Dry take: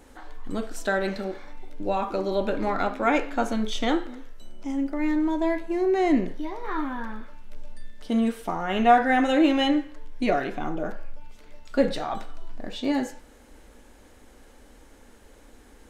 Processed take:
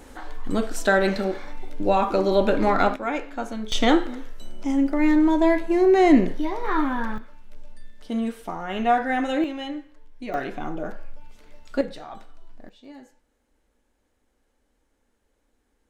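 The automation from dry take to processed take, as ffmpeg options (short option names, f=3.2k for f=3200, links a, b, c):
-af "asetnsamples=n=441:p=0,asendcmd='2.96 volume volume -5dB;3.72 volume volume 6dB;7.18 volume volume -3dB;9.44 volume volume -10dB;10.34 volume volume -1dB;11.81 volume volume -9dB;12.69 volume volume -19dB',volume=6dB"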